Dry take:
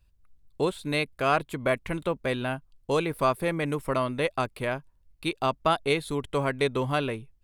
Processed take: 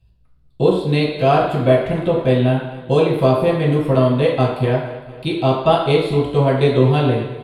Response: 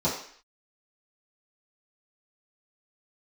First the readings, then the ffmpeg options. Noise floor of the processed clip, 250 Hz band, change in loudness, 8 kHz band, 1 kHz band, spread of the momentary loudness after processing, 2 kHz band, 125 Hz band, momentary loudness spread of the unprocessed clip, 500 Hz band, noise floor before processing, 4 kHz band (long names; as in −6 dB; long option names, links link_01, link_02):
−52 dBFS, +13.0 dB, +11.5 dB, can't be measured, +8.0 dB, 5 LU, +3.0 dB, +16.5 dB, 7 LU, +12.5 dB, −63 dBFS, +7.0 dB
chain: -filter_complex "[0:a]aecho=1:1:230|460|690|920|1150:0.133|0.0787|0.0464|0.0274|0.0162[link_01];[1:a]atrim=start_sample=2205,asetrate=32634,aresample=44100[link_02];[link_01][link_02]afir=irnorm=-1:irlink=0,volume=-6dB"